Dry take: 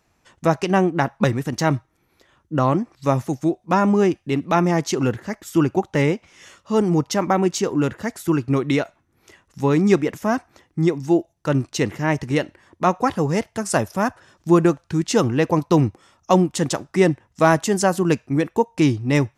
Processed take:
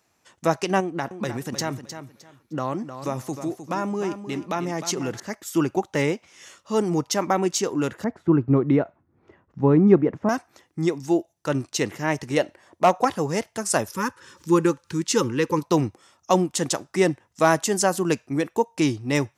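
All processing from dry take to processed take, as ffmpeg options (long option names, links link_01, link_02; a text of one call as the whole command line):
ffmpeg -i in.wav -filter_complex "[0:a]asettb=1/sr,asplit=3[link_01][link_02][link_03];[link_01]atrim=end=0.804[link_04];[link_02]atrim=start=0.8:end=5.2,asetpts=PTS-STARTPTS,afade=type=in:duration=0.004:curve=qsin,afade=type=out:start_time=4.396:duration=0.004:curve=qsin,acompressor=threshold=-20dB:ratio=3:attack=3.2:release=140:knee=1:detection=peak,aecho=1:1:308|616|924:0.316|0.0696|0.0153,atrim=end_sample=194040[link_05];[link_03]atrim=start=5.196[link_06];[link_04][link_05]acrossfade=duration=0.004:curve1=hsin:curve2=qsin[link_07];[link_07][link_06]acrossfade=duration=0.004:curve1=qsin:curve2=hsin,asettb=1/sr,asplit=3[link_08][link_09][link_10];[link_08]atrim=end=8.044[link_11];[link_09]atrim=start=8.04:end=10.29,asetpts=PTS-STARTPTS,afade=type=in:duration=0.004:curve=qsin,afade=type=out:start_time=2.246:duration=0.004:curve=qsin,lowpass=1300,lowshelf=frequency=320:gain=10[link_12];[link_10]atrim=start=10.286[link_13];[link_11][link_12]acrossfade=duration=0.004:curve1=hsin:curve2=qsin[link_14];[link_14][link_13]acrossfade=duration=0.004:curve1=qsin:curve2=hsin,asettb=1/sr,asplit=3[link_15][link_16][link_17];[link_15]atrim=end=12.374[link_18];[link_16]atrim=start=12.37:end=13.05,asetpts=PTS-STARTPTS,afade=type=in:duration=0.004:curve=qsin,afade=type=out:start_time=0.676:duration=0.004:curve=qsin,equalizer=frequency=650:width=1.9:gain=8,asoftclip=type=hard:threshold=-6.5dB[link_19];[link_17]atrim=start=13.046[link_20];[link_18][link_19]acrossfade=duration=0.004:curve1=hsin:curve2=qsin[link_21];[link_21][link_20]acrossfade=duration=0.004:curve1=qsin:curve2=hsin,asettb=1/sr,asplit=3[link_22][link_23][link_24];[link_22]atrim=end=13.884[link_25];[link_23]atrim=start=13.88:end=15.63,asetpts=PTS-STARTPTS,afade=type=in:duration=0.004:curve=qsin,afade=type=out:start_time=1.746:duration=0.004:curve=qsin,acompressor=mode=upward:threshold=-35dB:ratio=2.5:attack=3.2:release=140:knee=2.83:detection=peak,asuperstop=centerf=690:order=20:qfactor=2.5[link_26];[link_24]atrim=start=15.626[link_27];[link_25][link_26]acrossfade=duration=0.004:curve1=hsin:curve2=qsin[link_28];[link_28][link_27]acrossfade=duration=0.004:curve1=qsin:curve2=hsin,highpass=76,bass=frequency=250:gain=-5,treble=frequency=4000:gain=5,volume=-2.5dB" out.wav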